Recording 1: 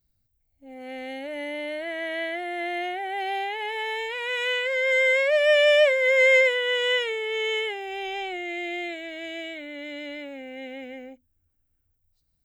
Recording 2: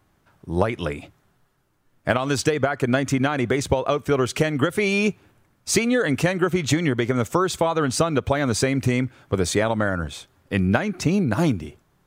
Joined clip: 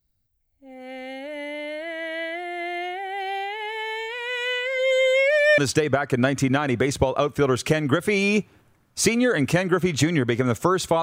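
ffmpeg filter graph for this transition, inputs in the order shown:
-filter_complex "[0:a]asplit=3[s0][s1][s2];[s0]afade=t=out:st=4.78:d=0.02[s3];[s1]aecho=1:1:2.2:0.97,afade=t=in:st=4.78:d=0.02,afade=t=out:st=5.58:d=0.02[s4];[s2]afade=t=in:st=5.58:d=0.02[s5];[s3][s4][s5]amix=inputs=3:normalize=0,apad=whole_dur=11.02,atrim=end=11.02,atrim=end=5.582[s6];[1:a]atrim=start=2.278:end=7.72[s7];[s6][s7]acrossfade=d=0.004:c1=hsin:c2=hsin"

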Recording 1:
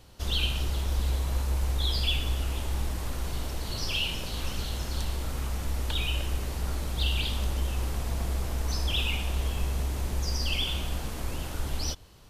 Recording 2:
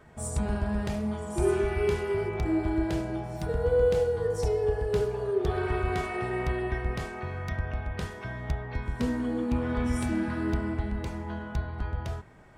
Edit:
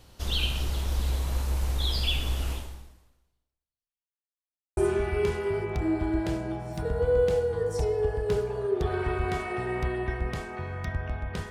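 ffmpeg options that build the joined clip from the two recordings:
-filter_complex "[0:a]apad=whole_dur=11.5,atrim=end=11.5,asplit=2[s0][s1];[s0]atrim=end=4.32,asetpts=PTS-STARTPTS,afade=t=out:st=2.52:d=1.8:c=exp[s2];[s1]atrim=start=4.32:end=4.77,asetpts=PTS-STARTPTS,volume=0[s3];[1:a]atrim=start=1.41:end=8.14,asetpts=PTS-STARTPTS,afade=t=in:d=0.004:c=hsin[s4];[s2][s3][s4]concat=n=3:v=0:a=1"

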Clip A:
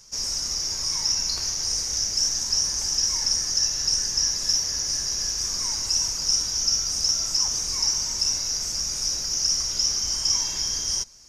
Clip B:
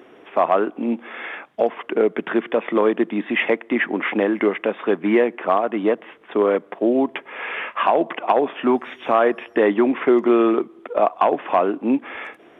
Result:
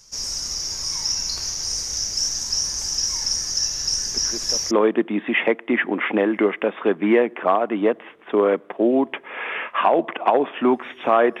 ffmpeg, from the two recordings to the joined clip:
-filter_complex "[1:a]asplit=2[s0][s1];[0:a]apad=whole_dur=11.4,atrim=end=11.4,atrim=end=4.712[s2];[s1]atrim=start=2.728:end=9.42[s3];[s0]atrim=start=2.08:end=2.73,asetpts=PTS-STARTPTS,volume=0.178,afade=t=in:d=0.004:c=hsin,afade=t=out:st=0.646:d=0.004:c=hsin,adelay=4060[s4];[s2][s3]acrossfade=d=0.004:c1=hsin:c2=hsin[s5];[s5][s4]amix=inputs=2:normalize=0"

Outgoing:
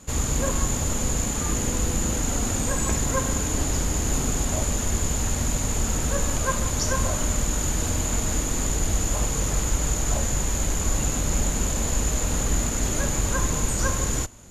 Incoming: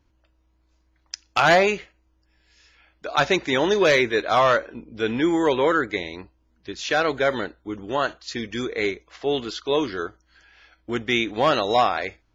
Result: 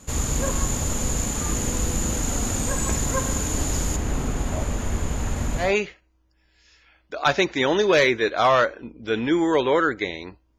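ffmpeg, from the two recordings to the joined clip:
-filter_complex "[0:a]asettb=1/sr,asplit=3[s0][s1][s2];[s0]atrim=end=3.964[s3];[s1]atrim=start=3.96:end=5.75,asetpts=PTS-STARTPTS,afade=t=in:d=0.004:c=qsin,afade=t=out:st=1.786:d=0.004:c=qsin,acrossover=split=3000[s4][s5];[s5]acompressor=threshold=0.0112:ratio=4:attack=1:release=60[s6];[s4][s6]amix=inputs=2:normalize=0[s7];[s2]atrim=start=5.746[s8];[s3][s7]acrossfade=d=0.004:c1=hsin:c2=qsin[s9];[s9][s8]acrossfade=d=0.004:c1=qsin:c2=hsin,apad=whole_dur=10.58,atrim=end=10.58,atrim=end=5.75,asetpts=PTS-STARTPTS[s10];[1:a]atrim=start=1.49:end=6.5,asetpts=PTS-STARTPTS[s11];[s10][s11]acrossfade=d=0.18:c1=tri:c2=tri"

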